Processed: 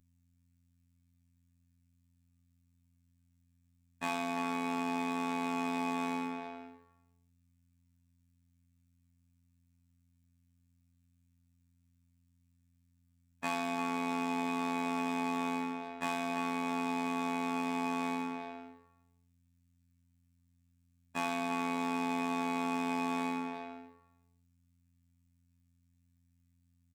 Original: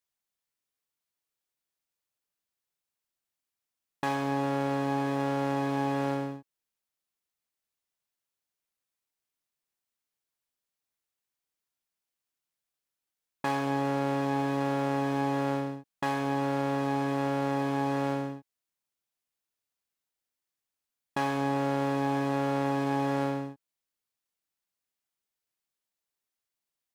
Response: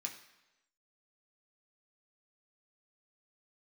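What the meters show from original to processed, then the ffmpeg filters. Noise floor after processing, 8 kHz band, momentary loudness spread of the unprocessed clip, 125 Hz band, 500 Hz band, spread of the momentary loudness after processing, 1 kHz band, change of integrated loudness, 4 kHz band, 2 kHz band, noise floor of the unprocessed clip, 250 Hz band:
−73 dBFS, +0.5 dB, 6 LU, −16.0 dB, −9.0 dB, 8 LU, −4.0 dB, −5.0 dB, −1.5 dB, −2.0 dB, below −85 dBFS, −5.0 dB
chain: -filter_complex "[0:a]asplit=2[link_01][link_02];[link_02]adelay=340,highpass=300,lowpass=3400,asoftclip=type=hard:threshold=-23.5dB,volume=-6dB[link_03];[link_01][link_03]amix=inputs=2:normalize=0[link_04];[1:a]atrim=start_sample=2205[link_05];[link_04][link_05]afir=irnorm=-1:irlink=0,aeval=exprs='val(0)+0.000398*(sin(2*PI*50*n/s)+sin(2*PI*2*50*n/s)/2+sin(2*PI*3*50*n/s)/3+sin(2*PI*4*50*n/s)/4+sin(2*PI*5*50*n/s)/5)':channel_layout=same,afftfilt=real='hypot(re,im)*cos(PI*b)':imag='0':win_size=2048:overlap=0.75,volume=4dB"

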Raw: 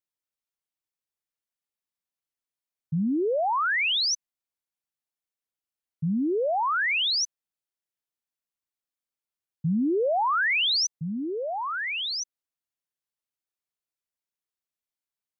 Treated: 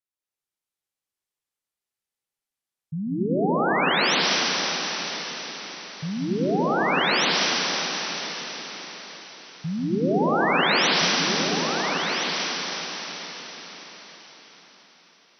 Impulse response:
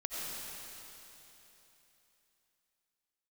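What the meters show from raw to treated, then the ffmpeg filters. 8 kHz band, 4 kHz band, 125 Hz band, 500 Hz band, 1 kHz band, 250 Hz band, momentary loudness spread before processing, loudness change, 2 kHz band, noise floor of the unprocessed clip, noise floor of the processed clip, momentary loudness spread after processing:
can't be measured, +4.0 dB, +4.0 dB, +4.0 dB, +4.0 dB, +4.0 dB, 9 LU, +2.0 dB, +4.0 dB, below −85 dBFS, below −85 dBFS, 17 LU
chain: -filter_complex "[1:a]atrim=start_sample=2205,asetrate=27342,aresample=44100[link_01];[0:a][link_01]afir=irnorm=-1:irlink=0,volume=-3dB"

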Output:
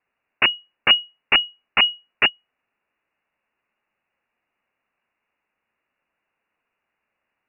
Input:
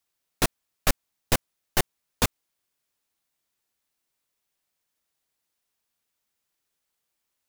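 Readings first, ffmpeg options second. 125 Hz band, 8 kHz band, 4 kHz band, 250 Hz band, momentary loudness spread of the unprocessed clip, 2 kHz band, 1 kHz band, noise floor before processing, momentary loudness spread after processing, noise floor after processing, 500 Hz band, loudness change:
−12.5 dB, below −40 dB, +17.0 dB, −5.5 dB, 2 LU, +13.0 dB, +5.0 dB, −81 dBFS, 3 LU, −81 dBFS, −1.5 dB, +10.0 dB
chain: -filter_complex "[0:a]lowpass=frequency=2500:width_type=q:width=0.5098,lowpass=frequency=2500:width_type=q:width=0.6013,lowpass=frequency=2500:width_type=q:width=0.9,lowpass=frequency=2500:width_type=q:width=2.563,afreqshift=-2900,equalizer=frequency=230:width=2.7:gain=4,asplit=2[link_01][link_02];[link_02]alimiter=limit=-21dB:level=0:latency=1:release=19,volume=-2dB[link_03];[link_01][link_03]amix=inputs=2:normalize=0,volume=5dB"

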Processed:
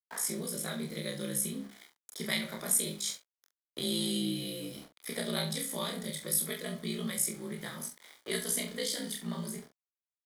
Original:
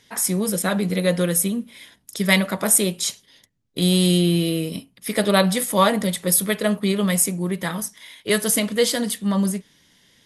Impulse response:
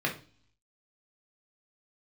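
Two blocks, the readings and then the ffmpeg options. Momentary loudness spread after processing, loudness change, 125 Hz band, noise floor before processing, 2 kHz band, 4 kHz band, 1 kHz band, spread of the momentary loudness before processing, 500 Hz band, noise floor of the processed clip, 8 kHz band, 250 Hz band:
12 LU, −13.5 dB, −17.5 dB, −60 dBFS, −14.5 dB, −10.5 dB, −19.5 dB, 12 LU, −17.0 dB, below −85 dBFS, −11.0 dB, −16.0 dB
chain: -filter_complex "[0:a]asplit=2[link_01][link_02];[link_02]adelay=69,lowpass=frequency=4600:poles=1,volume=-14dB,asplit=2[link_03][link_04];[link_04]adelay=69,lowpass=frequency=4600:poles=1,volume=0.3,asplit=2[link_05][link_06];[link_06]adelay=69,lowpass=frequency=4600:poles=1,volume=0.3[link_07];[link_01][link_03][link_05][link_07]amix=inputs=4:normalize=0,aeval=exprs='val(0)*sin(2*PI*29*n/s)':channel_layout=same,bandreject=frequency=50:width_type=h:width=6,bandreject=frequency=100:width_type=h:width=6,bandreject=frequency=150:width_type=h:width=6,bandreject=frequency=200:width_type=h:width=6,bandreject=frequency=250:width_type=h:width=6,bandreject=frequency=300:width_type=h:width=6,aeval=exprs='val(0)*gte(abs(val(0)),0.0112)':channel_layout=same,acrossover=split=250|3000[link_08][link_09][link_10];[link_09]acompressor=threshold=-37dB:ratio=2.5[link_11];[link_08][link_11][link_10]amix=inputs=3:normalize=0,bass=frequency=250:gain=-12,treble=frequency=4000:gain=-5,bandreject=frequency=2700:width=5.5,asplit=2[link_12][link_13];[link_13]adelay=44,volume=-9dB[link_14];[link_12][link_14]amix=inputs=2:normalize=0,flanger=delay=22.5:depth=7.5:speed=0.28,adynamicequalizer=threshold=0.00282:dfrequency=810:dqfactor=0.85:tfrequency=810:tqfactor=0.85:attack=5:release=100:ratio=0.375:range=3:mode=cutabove:tftype=bell"

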